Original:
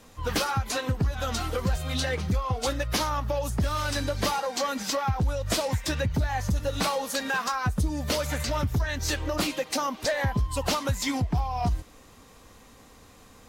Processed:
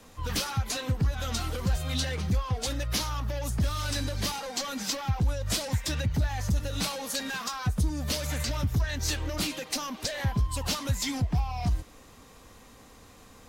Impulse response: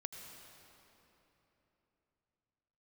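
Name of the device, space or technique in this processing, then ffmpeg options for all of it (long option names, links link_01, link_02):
one-band saturation: -filter_complex "[0:a]acrossover=split=230|2500[link_01][link_02][link_03];[link_02]asoftclip=type=tanh:threshold=-35.5dB[link_04];[link_01][link_04][link_03]amix=inputs=3:normalize=0"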